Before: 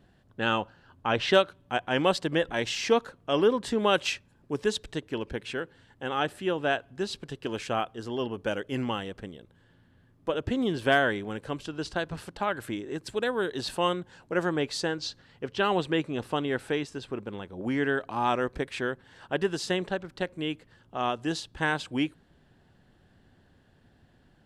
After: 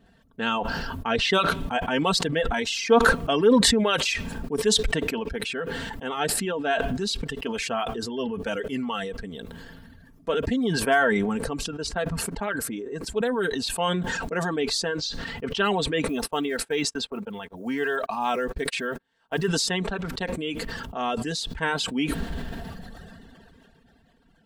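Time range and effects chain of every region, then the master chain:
10.79–13.63 bell 3500 Hz -5 dB 0.9 oct + mismatched tape noise reduction decoder only
16.08–19.48 block floating point 7-bit + gate -43 dBFS, range -47 dB + low shelf 220 Hz -5.5 dB
whole clip: comb 4.4 ms, depth 64%; reverb removal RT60 1.5 s; sustainer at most 20 dB/s

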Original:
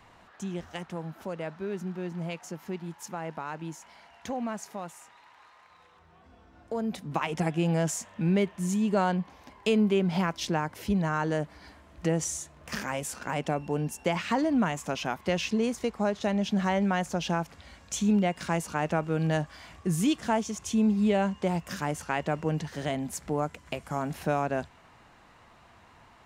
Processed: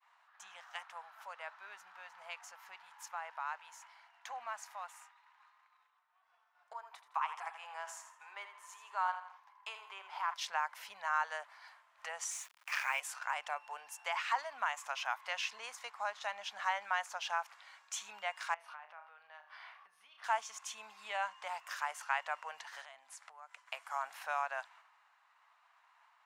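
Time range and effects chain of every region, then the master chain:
6.73–10.34 rippled Chebyshev high-pass 260 Hz, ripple 9 dB + feedback echo 82 ms, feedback 40%, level -10 dB
12.31–13 steep high-pass 150 Hz 72 dB/oct + bell 2400 Hz +11 dB 0.43 oct + requantised 8-bit, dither none
18.54–20.24 flutter echo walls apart 5.6 m, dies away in 0.24 s + compressor 10:1, threshold -39 dBFS + running mean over 6 samples
22.81–23.68 Chebyshev low-pass 11000 Hz, order 4 + compressor 5:1, threshold -40 dBFS
whole clip: expander -49 dBFS; inverse Chebyshev high-pass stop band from 360 Hz, stop band 50 dB; high shelf 2200 Hz -10.5 dB; gain +2 dB

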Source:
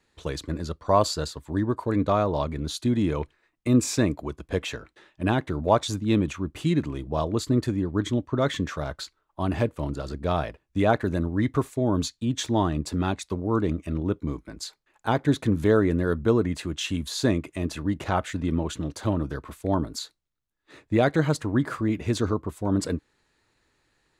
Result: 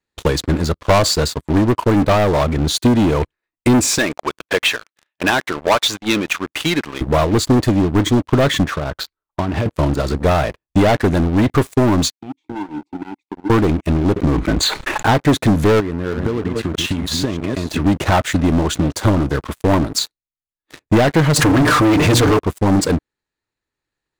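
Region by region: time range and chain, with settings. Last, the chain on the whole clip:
3.98–7.01 band-pass 2200 Hz, Q 0.66 + sample leveller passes 1
8.64–9.66 compressor, threshold -30 dBFS + air absorption 130 m
12.11–13.5 compressor 3:1, threshold -30 dBFS + vowel filter u
14.16–15.09 Butterworth band-stop 5300 Hz, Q 3.1 + air absorption 120 m + fast leveller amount 70%
15.8–17.8 reverse delay 0.319 s, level -9 dB + high shelf 6000 Hz -10 dB + compressor 16:1, threshold -30 dBFS
21.36–22.39 notches 60/120/180/240/300/360/420/480/540 Hz + comb 6.7 ms, depth 73% + fast leveller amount 70%
whole clip: sample leveller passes 5; transient shaper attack +4 dB, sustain -2 dB; gain -3.5 dB

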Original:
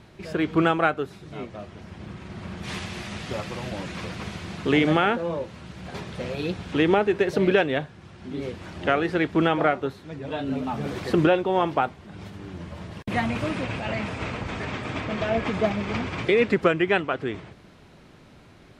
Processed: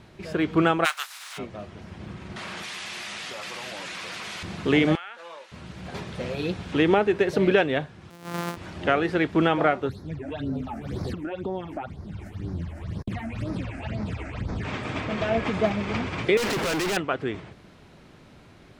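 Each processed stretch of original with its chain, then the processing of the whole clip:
0.84–1.37 spectral contrast lowered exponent 0.48 + HPF 1000 Hz 24 dB/oct + upward compressor, threshold -33 dBFS
2.36–4.43 HPF 1500 Hz 6 dB/oct + fast leveller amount 100%
4.95–5.52 HPF 1300 Hz + compressor, threshold -35 dBFS
8.1–8.57 sample sorter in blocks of 256 samples + HPF 140 Hz 24 dB/oct + dynamic EQ 1200 Hz, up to +7 dB, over -51 dBFS, Q 1.3
9.89–14.65 low shelf 160 Hz +11.5 dB + compressor, threshold -26 dBFS + phaser stages 8, 2 Hz, lowest notch 130–2900 Hz
16.37–16.97 overdrive pedal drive 33 dB, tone 1000 Hz, clips at -8 dBFS + hard clip -25.5 dBFS + high shelf 6000 Hz +11 dB
whole clip: dry

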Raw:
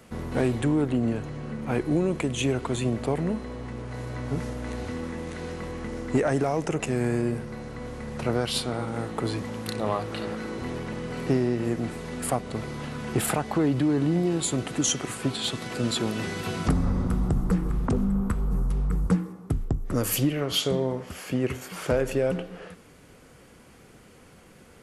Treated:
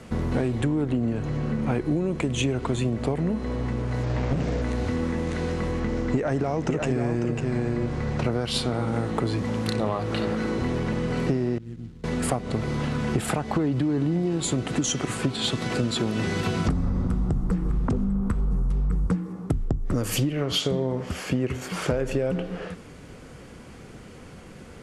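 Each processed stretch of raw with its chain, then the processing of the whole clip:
4.03–4.62 flutter echo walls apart 11.5 m, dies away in 0.87 s + careless resampling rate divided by 3×, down none, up filtered + Doppler distortion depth 0.99 ms
5.8–8.24 LPF 7200 Hz + echo 0.548 s -5.5 dB
11.58–12.04 median filter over 25 samples + passive tone stack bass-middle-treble 6-0-2
whole clip: LPF 8400 Hz 12 dB/oct; low shelf 320 Hz +5 dB; compressor 6:1, threshold -27 dBFS; gain +5.5 dB

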